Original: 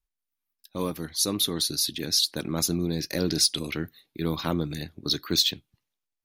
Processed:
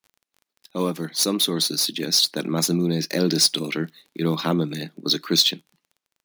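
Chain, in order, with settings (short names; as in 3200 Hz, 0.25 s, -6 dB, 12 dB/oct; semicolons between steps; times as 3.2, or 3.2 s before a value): median filter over 3 samples; elliptic high-pass 160 Hz; crackle 21/s -47 dBFS; gain +6 dB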